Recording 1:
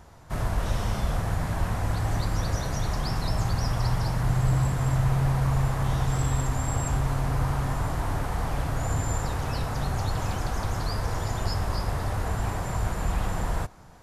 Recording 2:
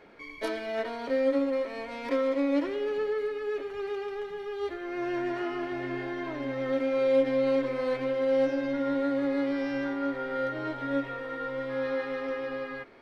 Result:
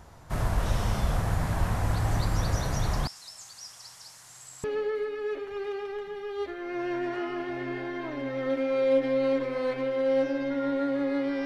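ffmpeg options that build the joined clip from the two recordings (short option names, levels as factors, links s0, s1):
-filter_complex "[0:a]asettb=1/sr,asplit=3[s0][s1][s2];[s0]atrim=end=3.074[s3];[s1]atrim=start=3.07:end=4.64,asetpts=PTS-STARTPTS,afade=t=in:d=0.004:c=qsin,afade=t=out:st=1.566:d=0.004:c=qsin,bandpass=f=7300:t=q:w=1.7:csg=0[s4];[s2]atrim=start=4.636[s5];[s3][s4]acrossfade=d=0.004:c1=hsin:c2=qsin[s6];[s6][s5]acrossfade=d=0.004:c1=qsin:c2=hsin,apad=whole_dur=11.45,atrim=end=11.45,atrim=end=4.642[s7];[1:a]atrim=start=2.868:end=9.68[s8];[s7][s8]acrossfade=d=0.004:c1=hsin:c2=hsin"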